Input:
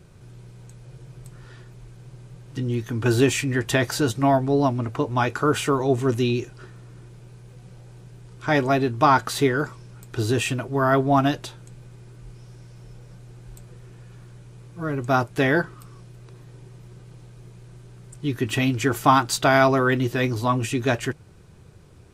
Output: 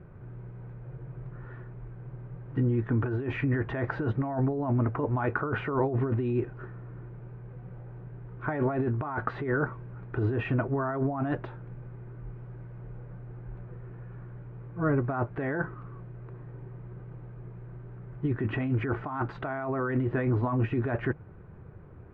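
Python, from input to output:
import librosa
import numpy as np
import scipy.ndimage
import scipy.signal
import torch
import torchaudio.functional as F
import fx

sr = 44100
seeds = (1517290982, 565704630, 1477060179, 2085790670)

y = fx.over_compress(x, sr, threshold_db=-25.0, ratio=-1.0)
y = scipy.signal.sosfilt(scipy.signal.butter(4, 1800.0, 'lowpass', fs=sr, output='sos'), y)
y = y * 10.0 ** (-2.5 / 20.0)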